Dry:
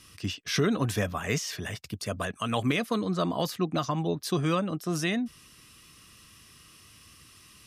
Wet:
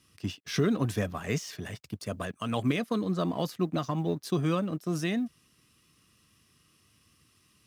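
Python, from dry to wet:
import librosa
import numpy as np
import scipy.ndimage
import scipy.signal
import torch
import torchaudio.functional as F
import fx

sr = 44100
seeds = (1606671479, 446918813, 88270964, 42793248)

y = fx.law_mismatch(x, sr, coded='A')
y = fx.highpass(y, sr, hz=130.0, slope=6)
y = fx.low_shelf(y, sr, hz=440.0, db=8.5)
y = y * librosa.db_to_amplitude(-4.5)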